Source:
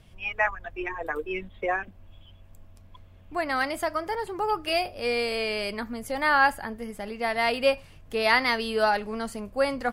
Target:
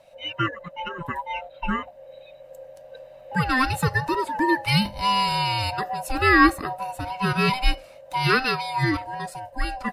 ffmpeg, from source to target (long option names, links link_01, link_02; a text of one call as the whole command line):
ffmpeg -i in.wav -af "afftfilt=real='real(if(lt(b,1008),b+24*(1-2*mod(floor(b/24),2)),b),0)':imag='imag(if(lt(b,1008),b+24*(1-2*mod(floor(b/24),2)),b),0)':win_size=2048:overlap=0.75,adynamicequalizer=threshold=0.00398:dfrequency=3000:dqfactor=7.1:tfrequency=3000:tqfactor=7.1:attack=5:release=100:ratio=0.375:range=3:mode=cutabove:tftype=bell,dynaudnorm=framelen=270:gausssize=17:maxgain=6dB" out.wav